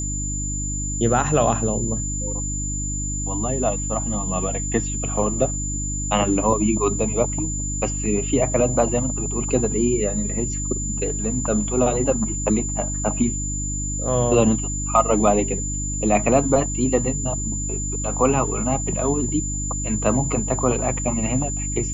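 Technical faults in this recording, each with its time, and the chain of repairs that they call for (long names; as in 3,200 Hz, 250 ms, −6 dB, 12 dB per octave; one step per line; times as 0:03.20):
mains hum 50 Hz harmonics 6 −28 dBFS
whistle 7,100 Hz −27 dBFS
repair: hum removal 50 Hz, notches 6
notch filter 7,100 Hz, Q 30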